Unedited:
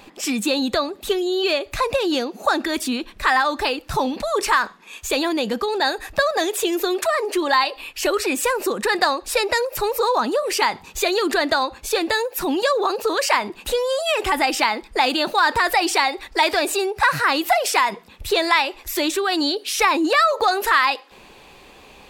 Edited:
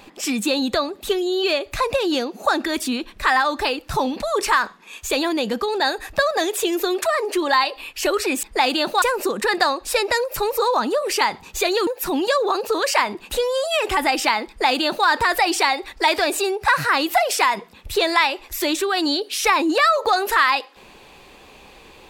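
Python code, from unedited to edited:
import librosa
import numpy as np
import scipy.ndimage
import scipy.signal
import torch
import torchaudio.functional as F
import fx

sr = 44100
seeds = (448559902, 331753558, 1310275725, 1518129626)

y = fx.edit(x, sr, fx.cut(start_s=11.28, length_s=0.94),
    fx.duplicate(start_s=14.83, length_s=0.59, to_s=8.43), tone=tone)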